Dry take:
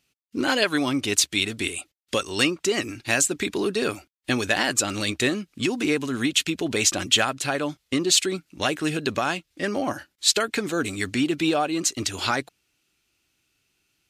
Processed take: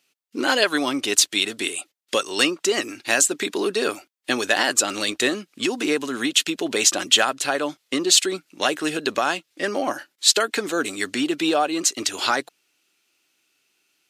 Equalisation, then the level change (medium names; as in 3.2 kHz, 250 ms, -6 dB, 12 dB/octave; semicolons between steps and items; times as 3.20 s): high-pass 320 Hz 12 dB/octave; dynamic bell 2.3 kHz, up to -5 dB, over -41 dBFS, Q 5.2; +3.5 dB